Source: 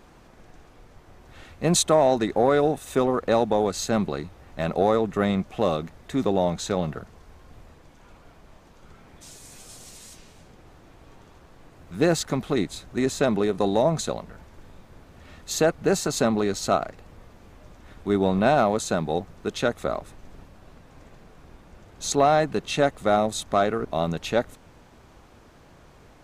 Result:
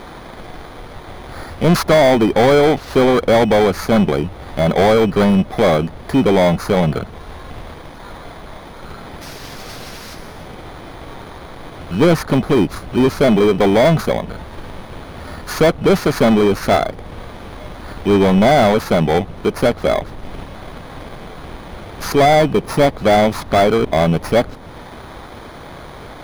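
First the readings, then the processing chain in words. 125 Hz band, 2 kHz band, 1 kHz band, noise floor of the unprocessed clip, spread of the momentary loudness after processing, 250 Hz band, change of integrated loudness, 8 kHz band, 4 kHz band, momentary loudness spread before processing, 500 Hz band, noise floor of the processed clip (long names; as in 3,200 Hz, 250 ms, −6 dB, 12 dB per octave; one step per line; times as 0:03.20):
+11.5 dB, +10.5 dB, +8.0 dB, −52 dBFS, 22 LU, +10.5 dB, +9.0 dB, −1.5 dB, +8.0 dB, 14 LU, +9.5 dB, −35 dBFS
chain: samples in bit-reversed order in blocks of 16 samples
RIAA equalisation playback
mid-hump overdrive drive 24 dB, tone 3,800 Hz, clips at −3.5 dBFS
one half of a high-frequency compander encoder only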